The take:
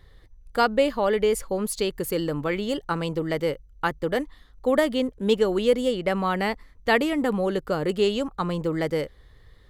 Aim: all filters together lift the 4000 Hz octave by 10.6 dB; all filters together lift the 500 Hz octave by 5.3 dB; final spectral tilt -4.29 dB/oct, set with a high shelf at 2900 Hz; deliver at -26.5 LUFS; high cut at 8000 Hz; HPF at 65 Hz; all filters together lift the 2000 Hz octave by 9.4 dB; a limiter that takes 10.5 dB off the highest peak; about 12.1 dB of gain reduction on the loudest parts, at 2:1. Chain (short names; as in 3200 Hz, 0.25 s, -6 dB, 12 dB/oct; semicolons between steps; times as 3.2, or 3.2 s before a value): HPF 65 Hz; LPF 8000 Hz; bell 500 Hz +5.5 dB; bell 2000 Hz +7.5 dB; high shelf 2900 Hz +5.5 dB; bell 4000 Hz +7 dB; compressor 2:1, threshold -32 dBFS; gain +6 dB; limiter -16 dBFS